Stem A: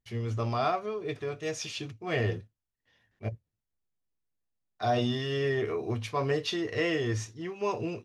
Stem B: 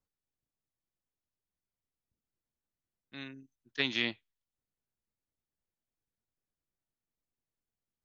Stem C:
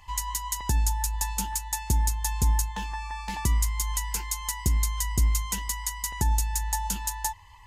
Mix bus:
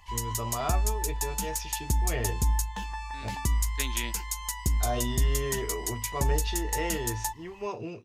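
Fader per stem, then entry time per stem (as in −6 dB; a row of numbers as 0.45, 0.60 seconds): −4.0, −4.0, −2.5 decibels; 0.00, 0.00, 0.00 seconds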